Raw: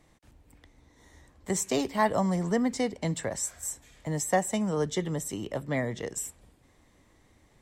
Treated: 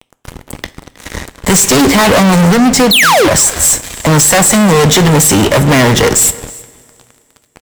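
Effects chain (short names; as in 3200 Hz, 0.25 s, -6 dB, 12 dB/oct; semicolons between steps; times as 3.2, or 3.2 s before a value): 2.52–3.69 compressor, threshold -32 dBFS, peak gain reduction 11 dB; 2.91–3.28 painted sound fall 280–4400 Hz -24 dBFS; fuzz box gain 47 dB, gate -53 dBFS; on a send: echo 0.317 s -22 dB; on the sum: two-slope reverb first 0.42 s, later 2.5 s, from -15 dB, DRR 14.5 dB; gain +6.5 dB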